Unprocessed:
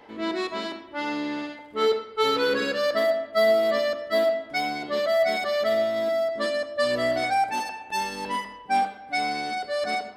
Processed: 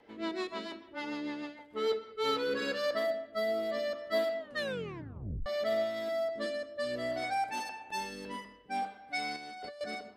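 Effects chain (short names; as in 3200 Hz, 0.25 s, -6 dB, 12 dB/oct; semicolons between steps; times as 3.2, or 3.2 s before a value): 4.39 tape stop 1.07 s; 9.36–9.81 negative-ratio compressor -37 dBFS, ratio -1; rotary speaker horn 6.7 Hz, later 0.6 Hz, at 1.82; gain -6.5 dB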